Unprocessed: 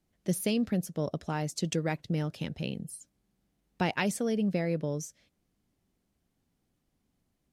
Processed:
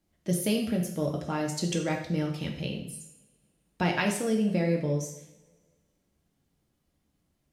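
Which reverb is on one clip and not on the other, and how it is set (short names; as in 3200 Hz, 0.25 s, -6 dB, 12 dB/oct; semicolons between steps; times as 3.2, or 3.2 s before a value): two-slope reverb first 0.65 s, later 1.9 s, from -20 dB, DRR 0.5 dB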